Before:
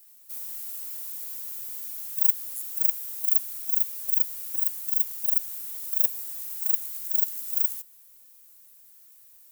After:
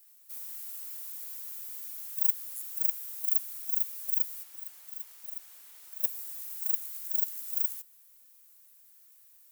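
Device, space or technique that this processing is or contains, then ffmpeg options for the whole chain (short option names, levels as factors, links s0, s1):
filter by subtraction: -filter_complex "[0:a]asplit=2[s0][s1];[s1]lowpass=1300,volume=-1[s2];[s0][s2]amix=inputs=2:normalize=0,asettb=1/sr,asplit=3[s3][s4][s5];[s3]atrim=end=4.434[s6];[s4]atrim=start=4.43:end=6.03,asetpts=PTS-STARTPTS,afade=t=in:d=0.004:c=qsin,afade=t=out:st=1.596:d=0.004:c=qsin,highshelf=f=6400:g=-12[s7];[s5]atrim=start=6.026[s8];[s6][s7]acrossfade=d=0.004:c1=hsin:c2=qsin[s9];[s9][s8]acrossfade=d=0.004:c1=qsin:c2=hsin,volume=0.562"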